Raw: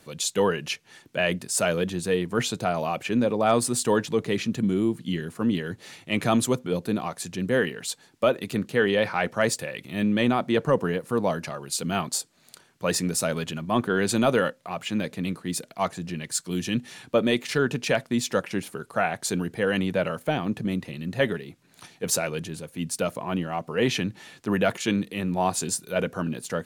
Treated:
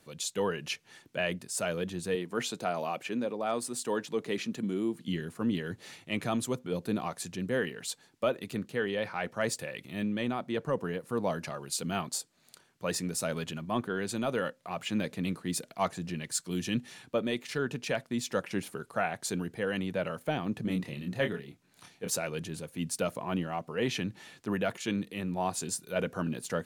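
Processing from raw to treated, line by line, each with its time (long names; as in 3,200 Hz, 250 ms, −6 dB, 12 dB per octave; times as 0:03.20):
0:02.15–0:05.08: high-pass filter 200 Hz
0:20.65–0:22.09: double-tracking delay 28 ms −5 dB
whole clip: speech leveller within 4 dB 0.5 s; level −7 dB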